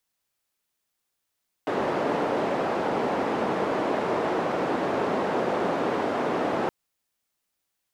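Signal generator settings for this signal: noise band 260–650 Hz, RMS -26 dBFS 5.02 s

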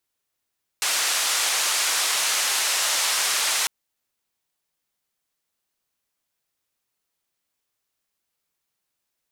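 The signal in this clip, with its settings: noise band 770–8800 Hz, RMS -23 dBFS 2.85 s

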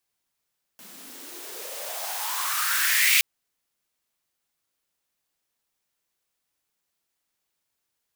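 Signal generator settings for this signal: swept filtered noise white, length 2.42 s highpass, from 190 Hz, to 2400 Hz, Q 5.2, exponential, gain ramp +26 dB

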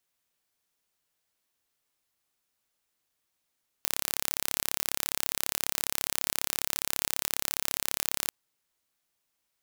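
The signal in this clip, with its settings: pulse train 34.7/s, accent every 0, -1.5 dBFS 4.44 s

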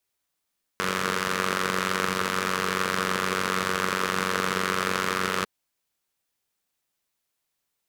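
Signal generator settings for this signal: four-cylinder engine model, steady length 4.65 s, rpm 2800, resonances 210/430/1200 Hz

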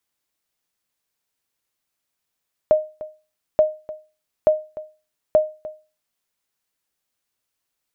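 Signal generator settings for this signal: sonar ping 618 Hz, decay 0.32 s, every 0.88 s, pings 4, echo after 0.30 s, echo -17.5 dB -7 dBFS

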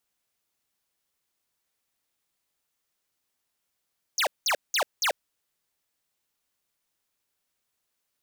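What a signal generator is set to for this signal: burst of laser zaps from 7100 Hz, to 480 Hz, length 0.09 s square, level -24 dB, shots 4, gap 0.19 s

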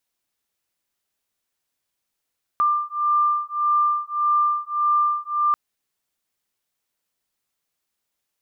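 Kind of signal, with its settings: beating tones 1190 Hz, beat 1.7 Hz, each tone -21 dBFS 2.94 s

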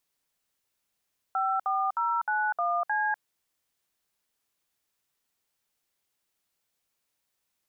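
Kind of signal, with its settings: DTMF "54091C", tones 0.247 s, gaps 62 ms, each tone -27 dBFS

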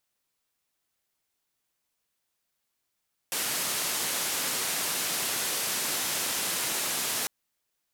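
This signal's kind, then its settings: noise band 150–13000 Hz, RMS -30 dBFS 3.95 s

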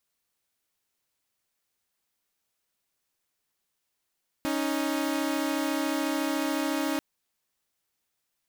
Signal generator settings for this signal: chord C#4/D#4 saw, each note -26.5 dBFS 2.54 s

